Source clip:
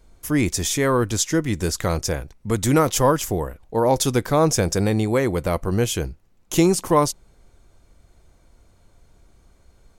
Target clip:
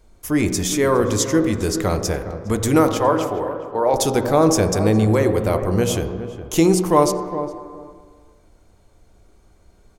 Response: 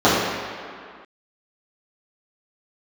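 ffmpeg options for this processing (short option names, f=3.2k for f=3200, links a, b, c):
-filter_complex "[0:a]asettb=1/sr,asplit=3[a][b][c];[a]atrim=end=2.924[d];[b]atrim=start=2.92:end=3.94,asetpts=PTS-STARTPTS,afade=t=in:d=0.004:c=qsin,afade=t=out:st=1.016:d=0.004:c=qsin,acrossover=split=360 4200:gain=0.224 1 0.224[e][f][g];[e][f][g]amix=inputs=3:normalize=0[h];[c]atrim=start=3.936[i];[d][h]acrossfade=d=0.004:c1=hsin:c2=qsin[j];[j][i]acrossfade=d=0.004:c1=qsin:c2=hsin,asplit=2[k][l];[l]adelay=412,lowpass=f=910:p=1,volume=-10dB,asplit=2[m][n];[n]adelay=412,lowpass=f=910:p=1,volume=0.16[o];[k][m][o]amix=inputs=3:normalize=0,asplit=2[p][q];[1:a]atrim=start_sample=2205,highshelf=f=4.3k:g=-10.5[r];[q][r]afir=irnorm=-1:irlink=0,volume=-32dB[s];[p][s]amix=inputs=2:normalize=0"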